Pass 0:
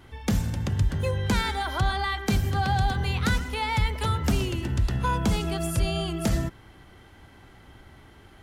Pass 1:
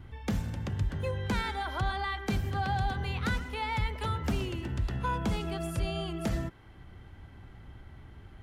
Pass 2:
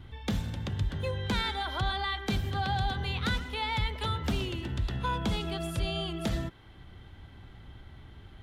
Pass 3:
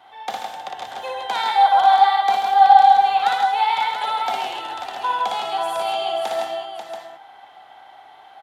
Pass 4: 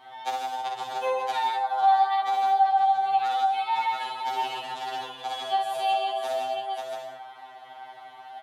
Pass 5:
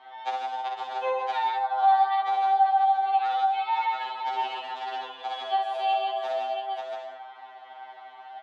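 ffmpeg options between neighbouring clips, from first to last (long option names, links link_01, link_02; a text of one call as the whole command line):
ffmpeg -i in.wav -filter_complex "[0:a]bass=frequency=250:gain=-2,treble=frequency=4000:gain=-7,acrossover=split=180|2800[link_01][link_02][link_03];[link_01]acompressor=mode=upward:threshold=-32dB:ratio=2.5[link_04];[link_04][link_02][link_03]amix=inputs=3:normalize=0,volume=-5dB" out.wav
ffmpeg -i in.wav -af "equalizer=frequency=3600:width_type=o:width=0.55:gain=9" out.wav
ffmpeg -i in.wav -af "highpass=frequency=760:width_type=q:width=8.6,aecho=1:1:58|137|161|539|682:0.708|0.398|0.501|0.398|0.355,volume=3dB" out.wav
ffmpeg -i in.wav -af "acompressor=threshold=-30dB:ratio=2.5,afftfilt=real='re*2.45*eq(mod(b,6),0)':imag='im*2.45*eq(mod(b,6),0)':win_size=2048:overlap=0.75,volume=2.5dB" out.wav
ffmpeg -i in.wav -af "highpass=370,lowpass=3500" out.wav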